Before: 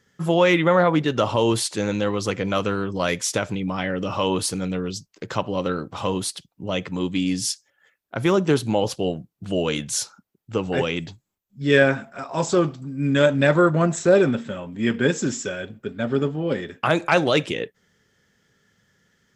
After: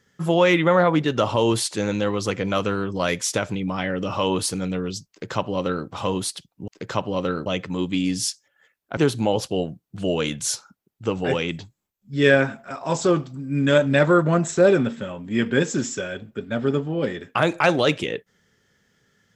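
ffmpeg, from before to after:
ffmpeg -i in.wav -filter_complex "[0:a]asplit=4[link_01][link_02][link_03][link_04];[link_01]atrim=end=6.682[link_05];[link_02]atrim=start=5.088:end=5.872[link_06];[link_03]atrim=start=6.678:end=8.192[link_07];[link_04]atrim=start=8.448[link_08];[link_05][link_06]acrossfade=duration=0.004:curve1=hsin:curve2=hsin[link_09];[link_09][link_07]acrossfade=duration=0.004:curve1=hsin:curve2=hsin[link_10];[link_10][link_08]acrossfade=duration=0.004:curve1=hsin:curve2=hsin" out.wav

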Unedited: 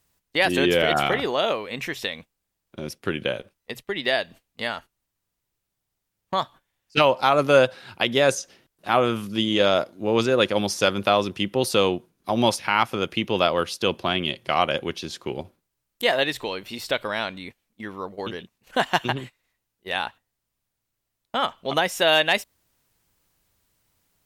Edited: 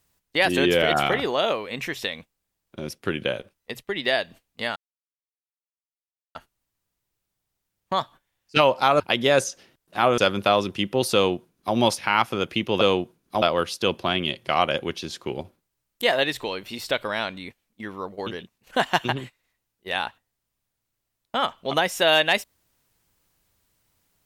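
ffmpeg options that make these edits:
ffmpeg -i in.wav -filter_complex "[0:a]asplit=6[link_01][link_02][link_03][link_04][link_05][link_06];[link_01]atrim=end=4.76,asetpts=PTS-STARTPTS,afade=type=out:start_time=4.756:duration=0.004:curve=hsin,apad=pad_dur=1.59[link_07];[link_02]atrim=start=4.76:end=7.412,asetpts=PTS-STARTPTS,afade=type=in:duration=0.004:curve=hsin[link_08];[link_03]atrim=start=7.908:end=9.092[link_09];[link_04]atrim=start=10.788:end=13.422[link_10];[link_05]atrim=start=11.748:end=12.362[link_11];[link_06]atrim=start=13.418[link_12];[link_07][link_08]concat=n=2:v=0:a=1[link_13];[link_13][link_09]acrossfade=duration=0.004:curve1=hsin:curve2=hsin[link_14];[link_14][link_10]acrossfade=duration=0.004:curve1=hsin:curve2=hsin[link_15];[link_15][link_11]acrossfade=duration=0.004:curve1=hsin:curve2=hsin[link_16];[link_16][link_12]acrossfade=duration=0.004:curve1=hsin:curve2=hsin" out.wav

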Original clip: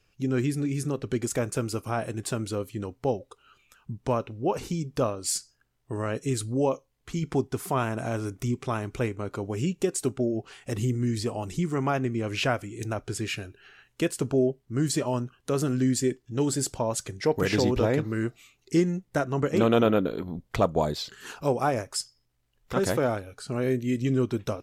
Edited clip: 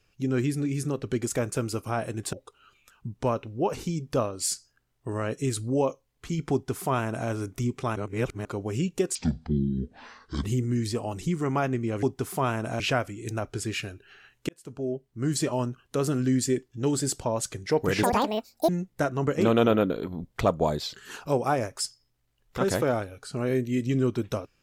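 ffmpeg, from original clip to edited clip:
ffmpeg -i in.wav -filter_complex "[0:a]asplit=11[link_01][link_02][link_03][link_04][link_05][link_06][link_07][link_08][link_09][link_10][link_11];[link_01]atrim=end=2.332[link_12];[link_02]atrim=start=3.168:end=8.802[link_13];[link_03]atrim=start=8.798:end=9.292,asetpts=PTS-STARTPTS,areverse[link_14];[link_04]atrim=start=9.288:end=9.994[link_15];[link_05]atrim=start=9.99:end=10.75,asetpts=PTS-STARTPTS,asetrate=26019,aresample=44100[link_16];[link_06]atrim=start=10.746:end=12.342[link_17];[link_07]atrim=start=7.358:end=8.132[link_18];[link_08]atrim=start=12.338:end=14.03,asetpts=PTS-STARTPTS,afade=type=out:start_time=1.688:duration=0.004:curve=hsin[link_19];[link_09]atrim=start=14.03:end=17.574,asetpts=PTS-STARTPTS,afade=type=in:duration=0.91[link_20];[link_10]atrim=start=17.57:end=18.84,asetpts=PTS-STARTPTS,asetrate=85113,aresample=44100,atrim=end_sample=29019,asetpts=PTS-STARTPTS[link_21];[link_11]atrim=start=18.836[link_22];[link_12][link_13]acrossfade=duration=0.004:curve1=hsin:curve2=hsin[link_23];[link_23][link_14]acrossfade=duration=0.004:curve1=hsin:curve2=hsin[link_24];[link_24][link_15]acrossfade=duration=0.004:curve1=hsin:curve2=hsin[link_25];[link_25][link_16]acrossfade=duration=0.004:curve1=hsin:curve2=hsin[link_26];[link_26][link_17]acrossfade=duration=0.004:curve1=hsin:curve2=hsin[link_27];[link_27][link_18]acrossfade=duration=0.004:curve1=hsin:curve2=hsin[link_28];[link_19][link_20]concat=n=2:v=0:a=1[link_29];[link_28][link_29]acrossfade=duration=0.004:curve1=hsin:curve2=hsin[link_30];[link_30][link_21]acrossfade=duration=0.004:curve1=hsin:curve2=hsin[link_31];[link_31][link_22]acrossfade=duration=0.004:curve1=hsin:curve2=hsin" out.wav

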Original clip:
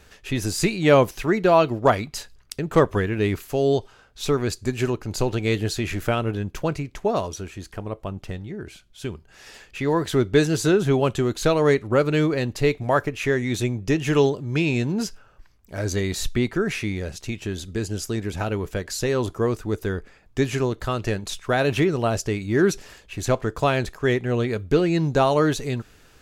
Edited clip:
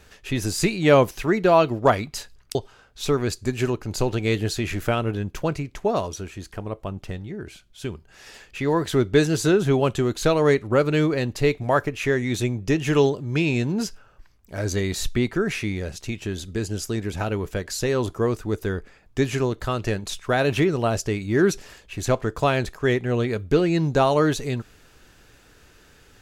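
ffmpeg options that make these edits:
ffmpeg -i in.wav -filter_complex "[0:a]asplit=2[link_01][link_02];[link_01]atrim=end=2.552[link_03];[link_02]atrim=start=3.748[link_04];[link_03][link_04]acrossfade=duration=0.004:curve1=hsin:curve2=hsin" out.wav

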